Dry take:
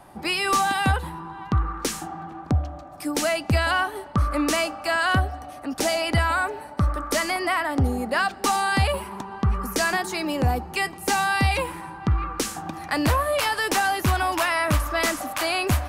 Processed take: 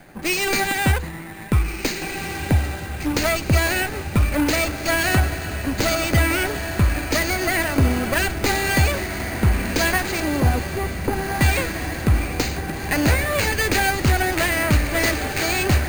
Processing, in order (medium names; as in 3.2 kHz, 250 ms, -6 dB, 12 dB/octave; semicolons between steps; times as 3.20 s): comb filter that takes the minimum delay 0.45 ms; 10.20–11.41 s: low-pass 1.3 kHz 24 dB/octave; echo that smears into a reverb 1755 ms, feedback 55%, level -8 dB; careless resampling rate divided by 4×, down none, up hold; trim +4 dB